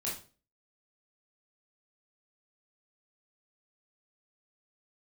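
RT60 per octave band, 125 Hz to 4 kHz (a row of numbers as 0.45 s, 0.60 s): 0.45 s, 0.45 s, 0.40 s, 0.35 s, 0.35 s, 0.35 s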